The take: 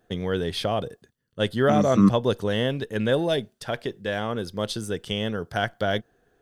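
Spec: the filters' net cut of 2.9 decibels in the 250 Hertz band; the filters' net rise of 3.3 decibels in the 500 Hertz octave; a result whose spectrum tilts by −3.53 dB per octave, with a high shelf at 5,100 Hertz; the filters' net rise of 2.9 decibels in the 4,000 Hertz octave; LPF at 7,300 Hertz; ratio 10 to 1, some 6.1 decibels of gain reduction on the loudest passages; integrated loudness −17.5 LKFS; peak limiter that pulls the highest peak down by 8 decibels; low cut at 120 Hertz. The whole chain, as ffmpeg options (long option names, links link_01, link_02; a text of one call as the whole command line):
ffmpeg -i in.wav -af "highpass=120,lowpass=7300,equalizer=frequency=250:width_type=o:gain=-4.5,equalizer=frequency=500:width_type=o:gain=5,equalizer=frequency=4000:width_type=o:gain=6.5,highshelf=frequency=5100:gain=-7,acompressor=threshold=-20dB:ratio=10,volume=11.5dB,alimiter=limit=-5.5dB:level=0:latency=1" out.wav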